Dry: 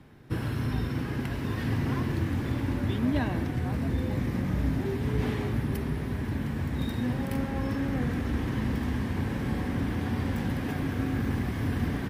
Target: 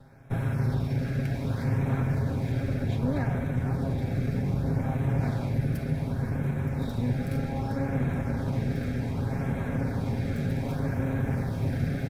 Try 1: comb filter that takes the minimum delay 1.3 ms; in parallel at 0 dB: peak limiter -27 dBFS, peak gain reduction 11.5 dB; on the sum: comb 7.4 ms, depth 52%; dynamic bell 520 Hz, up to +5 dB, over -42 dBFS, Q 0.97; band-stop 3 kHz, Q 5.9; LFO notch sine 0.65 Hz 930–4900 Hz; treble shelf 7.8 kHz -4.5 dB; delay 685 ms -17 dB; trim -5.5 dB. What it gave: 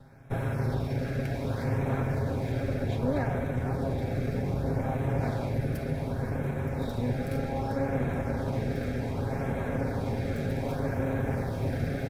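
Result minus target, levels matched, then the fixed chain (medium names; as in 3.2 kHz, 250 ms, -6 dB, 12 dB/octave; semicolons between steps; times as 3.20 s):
500 Hz band +5.5 dB
comb filter that takes the minimum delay 1.3 ms; in parallel at 0 dB: peak limiter -27 dBFS, peak gain reduction 11.5 dB; on the sum: comb 7.4 ms, depth 52%; dynamic bell 170 Hz, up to +5 dB, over -42 dBFS, Q 0.97; band-stop 3 kHz, Q 5.9; LFO notch sine 0.65 Hz 930–4900 Hz; treble shelf 7.8 kHz -4.5 dB; delay 685 ms -17 dB; trim -5.5 dB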